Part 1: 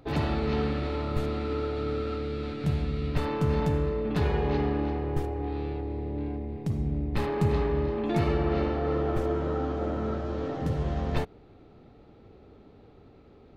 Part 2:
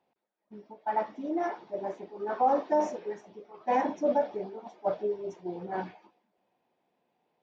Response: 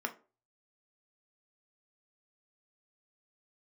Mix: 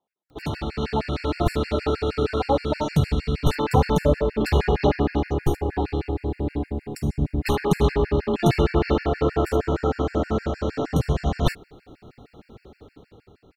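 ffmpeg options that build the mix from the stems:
-filter_complex "[0:a]highshelf=frequency=3800:gain=10,adelay=300,volume=-1dB[link_01];[1:a]volume=-5dB[link_02];[link_01][link_02]amix=inputs=2:normalize=0,dynaudnorm=framelen=240:gausssize=9:maxgain=10dB,afftfilt=real='re*gt(sin(2*PI*6.4*pts/sr)*(1-2*mod(floor(b*sr/1024/1400),2)),0)':imag='im*gt(sin(2*PI*6.4*pts/sr)*(1-2*mod(floor(b*sr/1024/1400),2)),0)':win_size=1024:overlap=0.75"

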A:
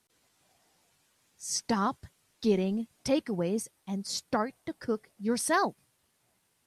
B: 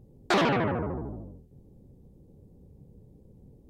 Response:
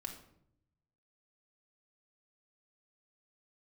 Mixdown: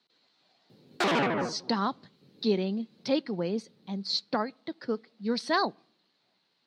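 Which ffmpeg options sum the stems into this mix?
-filter_complex "[0:a]lowpass=frequency=4200:width_type=q:width=6.7,volume=-0.5dB,asplit=3[link_01][link_02][link_03];[link_02]volume=-22.5dB[link_04];[1:a]highshelf=frequency=2400:gain=10.5,tremolo=f=4:d=0.34,asoftclip=type=tanh:threshold=-22dB,adelay=700,volume=2.5dB[link_05];[link_03]apad=whole_len=193917[link_06];[link_05][link_06]sidechaincompress=threshold=-43dB:ratio=8:attack=16:release=344[link_07];[2:a]atrim=start_sample=2205[link_08];[link_04][link_08]afir=irnorm=-1:irlink=0[link_09];[link_01][link_07][link_09]amix=inputs=3:normalize=0,highpass=frequency=160:width=0.5412,highpass=frequency=160:width=1.3066,highshelf=frequency=3800:gain=-10"

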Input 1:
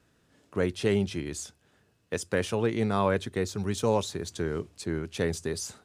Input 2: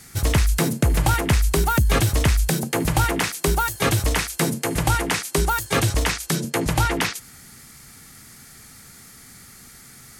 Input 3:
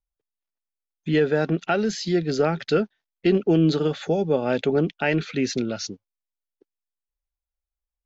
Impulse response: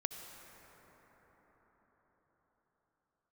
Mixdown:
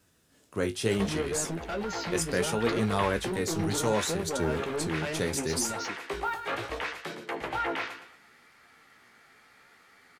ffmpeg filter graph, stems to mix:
-filter_complex "[0:a]crystalizer=i=2:c=0,volume=2dB[link_01];[1:a]acrossover=split=360 3300:gain=0.0891 1 0.0708[link_02][link_03][link_04];[link_02][link_03][link_04]amix=inputs=3:normalize=0,alimiter=limit=-18dB:level=0:latency=1:release=16,adelay=750,volume=-1dB,asplit=2[link_05][link_06];[link_06]volume=-9.5dB[link_07];[2:a]asoftclip=type=tanh:threshold=-22.5dB,volume=-3dB,asplit=2[link_08][link_09];[link_09]apad=whole_len=482547[link_10];[link_05][link_10]sidechaincompress=threshold=-40dB:ratio=8:attack=45:release=118[link_11];[link_07]aecho=0:1:114|228|342|456|570:1|0.35|0.122|0.0429|0.015[link_12];[link_01][link_11][link_08][link_12]amix=inputs=4:normalize=0,flanger=delay=9.9:depth=9.8:regen=42:speed=0.7:shape=triangular"

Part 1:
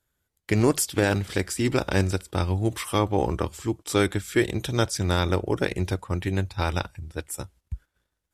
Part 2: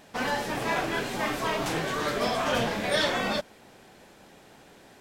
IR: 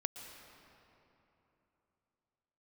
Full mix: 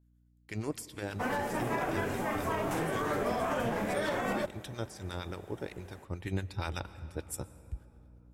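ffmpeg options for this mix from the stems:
-filter_complex "[0:a]acrossover=split=1000[link_01][link_02];[link_01]aeval=exprs='val(0)*(1-0.7/2+0.7/2*cos(2*PI*8.5*n/s))':channel_layout=same[link_03];[link_02]aeval=exprs='val(0)*(1-0.7/2-0.7/2*cos(2*PI*8.5*n/s))':channel_layout=same[link_04];[link_03][link_04]amix=inputs=2:normalize=0,aeval=exprs='val(0)+0.00251*(sin(2*PI*60*n/s)+sin(2*PI*2*60*n/s)/2+sin(2*PI*3*60*n/s)/3+sin(2*PI*4*60*n/s)/4+sin(2*PI*5*60*n/s)/5)':channel_layout=same,volume=-6dB,afade=type=in:start_time=6.05:duration=0.31:silence=0.354813,asplit=2[link_05][link_06];[link_06]volume=-8.5dB[link_07];[1:a]equalizer=frequency=4200:width=0.95:gain=-14.5,adelay=1050,volume=-2dB,asplit=2[link_08][link_09];[link_09]volume=-15.5dB[link_10];[2:a]atrim=start_sample=2205[link_11];[link_07][link_10]amix=inputs=2:normalize=0[link_12];[link_12][link_11]afir=irnorm=-1:irlink=0[link_13];[link_05][link_08][link_13]amix=inputs=3:normalize=0,alimiter=limit=-22.5dB:level=0:latency=1:release=88"

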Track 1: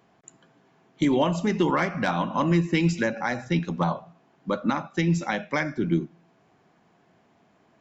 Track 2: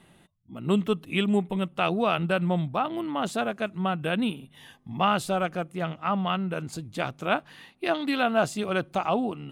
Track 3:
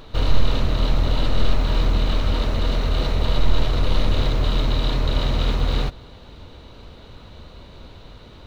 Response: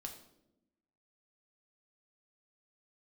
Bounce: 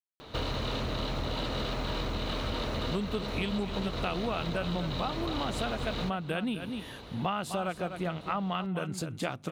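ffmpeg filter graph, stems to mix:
-filter_complex "[1:a]adelay=2250,volume=2dB,asplit=2[link_01][link_02];[link_02]volume=-12.5dB[link_03];[2:a]lowshelf=frequency=110:gain=-10,adelay=200,volume=-1dB[link_04];[link_03]aecho=0:1:250:1[link_05];[link_01][link_04][link_05]amix=inputs=3:normalize=0,highpass=43,acompressor=threshold=-29dB:ratio=6"

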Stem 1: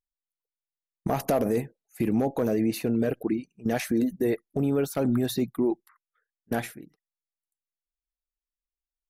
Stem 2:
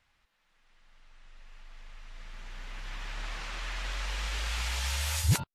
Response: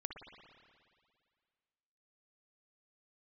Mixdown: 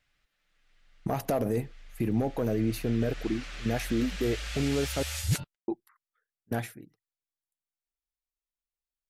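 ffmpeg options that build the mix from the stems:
-filter_complex "[0:a]equalizer=frequency=110:width=4.4:gain=10,volume=-4dB,asplit=3[link_01][link_02][link_03];[link_01]atrim=end=5.03,asetpts=PTS-STARTPTS,afade=type=out:start_time=5.026:duration=0.004:curve=hsin[link_04];[link_02]atrim=start=5.03:end=5.68,asetpts=PTS-STARTPTS,volume=0[link_05];[link_03]atrim=start=5.68,asetpts=PTS-STARTPTS,afade=type=in:duration=0.004:curve=hsin[link_06];[link_04][link_05][link_06]concat=n=3:v=0:a=1[link_07];[1:a]equalizer=frequency=950:width_type=o:width=0.5:gain=-11,aecho=1:1:6.8:0.3,volume=-2.5dB[link_08];[link_07][link_08]amix=inputs=2:normalize=0"

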